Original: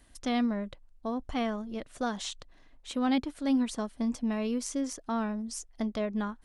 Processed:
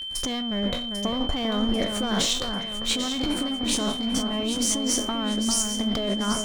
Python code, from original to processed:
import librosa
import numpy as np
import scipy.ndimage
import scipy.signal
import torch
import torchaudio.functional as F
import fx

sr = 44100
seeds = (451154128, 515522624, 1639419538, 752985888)

y = fx.spec_trails(x, sr, decay_s=0.34)
y = fx.leveller(y, sr, passes=3)
y = fx.over_compress(y, sr, threshold_db=-27.0, ratio=-1.0)
y = fx.echo_alternate(y, sr, ms=397, hz=2100.0, feedback_pct=69, wet_db=-5.5)
y = y + 10.0 ** (-31.0 / 20.0) * np.sin(2.0 * np.pi * 3100.0 * np.arange(len(y)) / sr)